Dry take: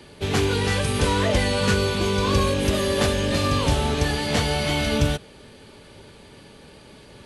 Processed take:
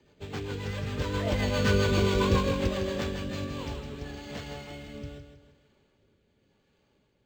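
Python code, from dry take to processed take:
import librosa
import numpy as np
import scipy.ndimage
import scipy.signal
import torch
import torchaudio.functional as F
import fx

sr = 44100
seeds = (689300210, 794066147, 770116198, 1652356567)

p1 = fx.doppler_pass(x, sr, speed_mps=7, closest_m=2.7, pass_at_s=1.98)
p2 = fx.rotary_switch(p1, sr, hz=7.5, then_hz=0.85, switch_at_s=2.96)
p3 = p2 + fx.echo_feedback(p2, sr, ms=160, feedback_pct=39, wet_db=-8.5, dry=0)
y = np.interp(np.arange(len(p3)), np.arange(len(p3))[::4], p3[::4])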